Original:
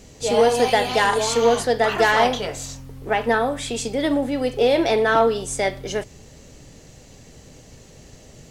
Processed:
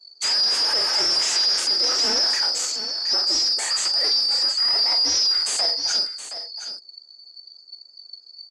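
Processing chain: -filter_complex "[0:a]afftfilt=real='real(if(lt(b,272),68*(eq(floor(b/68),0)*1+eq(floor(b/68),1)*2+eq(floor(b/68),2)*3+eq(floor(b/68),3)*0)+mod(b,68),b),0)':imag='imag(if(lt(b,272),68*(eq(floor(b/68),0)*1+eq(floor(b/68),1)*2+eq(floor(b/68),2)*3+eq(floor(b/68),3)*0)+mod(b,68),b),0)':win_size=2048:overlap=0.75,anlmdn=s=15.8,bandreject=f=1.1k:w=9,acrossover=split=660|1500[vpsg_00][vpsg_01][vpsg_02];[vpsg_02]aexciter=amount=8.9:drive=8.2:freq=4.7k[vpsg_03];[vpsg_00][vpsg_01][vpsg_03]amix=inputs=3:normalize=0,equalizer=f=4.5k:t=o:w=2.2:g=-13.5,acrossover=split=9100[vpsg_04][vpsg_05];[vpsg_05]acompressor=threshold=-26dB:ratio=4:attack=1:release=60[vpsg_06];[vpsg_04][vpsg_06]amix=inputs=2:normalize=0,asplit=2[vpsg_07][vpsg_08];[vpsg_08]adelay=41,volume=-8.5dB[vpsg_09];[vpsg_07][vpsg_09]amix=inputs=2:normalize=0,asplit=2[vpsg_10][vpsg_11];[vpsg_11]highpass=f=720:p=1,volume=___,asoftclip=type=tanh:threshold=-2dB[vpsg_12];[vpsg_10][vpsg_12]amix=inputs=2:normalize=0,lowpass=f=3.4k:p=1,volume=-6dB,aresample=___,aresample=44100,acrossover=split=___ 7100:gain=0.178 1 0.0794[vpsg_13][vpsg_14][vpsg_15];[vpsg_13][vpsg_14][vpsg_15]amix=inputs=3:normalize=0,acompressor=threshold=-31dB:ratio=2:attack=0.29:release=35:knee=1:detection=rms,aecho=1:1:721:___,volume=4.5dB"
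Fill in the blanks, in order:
21dB, 32000, 330, 0.282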